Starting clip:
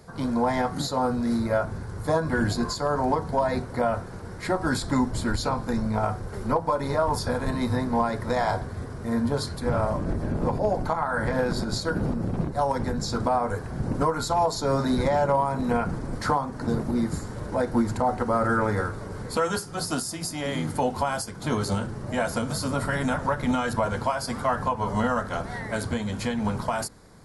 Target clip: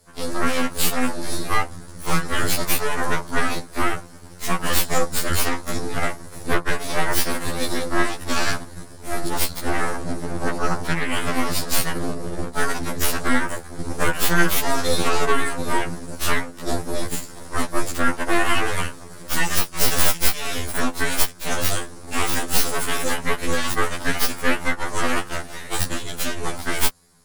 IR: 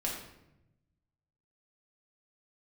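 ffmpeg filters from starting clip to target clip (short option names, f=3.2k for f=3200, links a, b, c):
-af "crystalizer=i=4:c=0,aeval=exprs='0.473*(cos(1*acos(clip(val(0)/0.473,-1,1)))-cos(1*PI/2))+0.0168*(cos(2*acos(clip(val(0)/0.473,-1,1)))-cos(2*PI/2))+0.133*(cos(3*acos(clip(val(0)/0.473,-1,1)))-cos(3*PI/2))+0.188*(cos(6*acos(clip(val(0)/0.473,-1,1)))-cos(6*PI/2))+0.0335*(cos(7*acos(clip(val(0)/0.473,-1,1)))-cos(7*PI/2))':c=same,afftfilt=real='re*2*eq(mod(b,4),0)':imag='im*2*eq(mod(b,4),0)':win_size=2048:overlap=0.75,volume=1.5dB"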